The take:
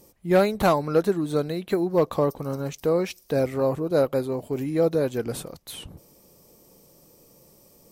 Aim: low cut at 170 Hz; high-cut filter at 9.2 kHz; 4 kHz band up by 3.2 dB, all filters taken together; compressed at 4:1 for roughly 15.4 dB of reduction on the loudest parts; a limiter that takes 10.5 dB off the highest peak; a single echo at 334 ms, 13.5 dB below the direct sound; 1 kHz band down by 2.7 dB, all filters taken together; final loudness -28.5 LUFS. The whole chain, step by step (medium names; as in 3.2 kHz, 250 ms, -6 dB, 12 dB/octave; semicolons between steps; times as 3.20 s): high-pass 170 Hz; low-pass 9.2 kHz; peaking EQ 1 kHz -4 dB; peaking EQ 4 kHz +4 dB; compression 4:1, threshold -35 dBFS; peak limiter -32 dBFS; delay 334 ms -13.5 dB; trim +13 dB